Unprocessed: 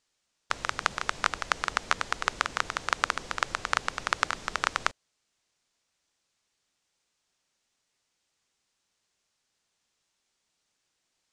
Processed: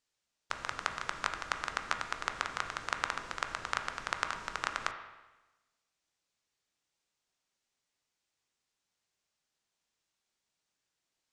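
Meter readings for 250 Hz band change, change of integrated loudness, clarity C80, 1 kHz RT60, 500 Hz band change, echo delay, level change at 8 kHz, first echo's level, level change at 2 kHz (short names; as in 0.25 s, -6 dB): -6.0 dB, -6.5 dB, 10.0 dB, 1.1 s, -6.5 dB, none, -7.5 dB, none, -6.5 dB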